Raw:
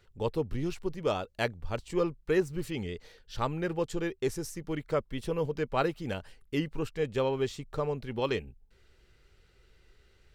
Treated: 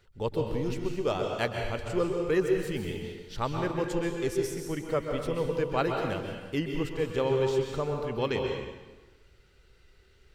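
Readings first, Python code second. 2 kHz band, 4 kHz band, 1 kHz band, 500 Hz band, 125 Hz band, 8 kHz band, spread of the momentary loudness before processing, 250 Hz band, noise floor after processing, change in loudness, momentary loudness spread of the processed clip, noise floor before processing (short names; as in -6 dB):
+2.0 dB, +2.0 dB, +2.0 dB, +3.0 dB, +2.0 dB, +2.0 dB, 8 LU, +2.0 dB, -60 dBFS, +2.5 dB, 7 LU, -64 dBFS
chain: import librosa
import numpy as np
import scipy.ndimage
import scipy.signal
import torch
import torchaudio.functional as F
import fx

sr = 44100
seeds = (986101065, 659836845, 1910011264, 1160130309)

y = fx.rev_plate(x, sr, seeds[0], rt60_s=1.2, hf_ratio=0.9, predelay_ms=115, drr_db=2.0)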